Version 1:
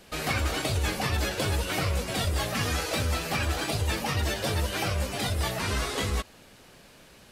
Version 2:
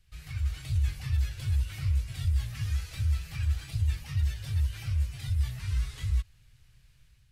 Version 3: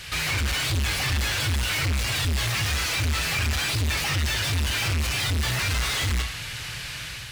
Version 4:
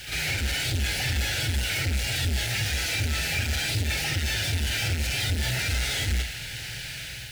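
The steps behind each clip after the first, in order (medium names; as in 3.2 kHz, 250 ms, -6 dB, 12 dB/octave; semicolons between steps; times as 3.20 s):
FFT filter 130 Hz 0 dB, 210 Hz -23 dB, 620 Hz -27 dB, 2 kHz -11 dB; level rider gain up to 5 dB; bass shelf 88 Hz +9.5 dB; trim -8 dB
FDN reverb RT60 0.39 s, low-frequency decay 0.75×, high-frequency decay 0.95×, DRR 11 dB; overdrive pedal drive 45 dB, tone 4.8 kHz, clips at -17.5 dBFS
in parallel at -11 dB: word length cut 6-bit, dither triangular; on the sum: Butterworth band-stop 1.1 kHz, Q 2.2; reverse echo 47 ms -7.5 dB; trim -4.5 dB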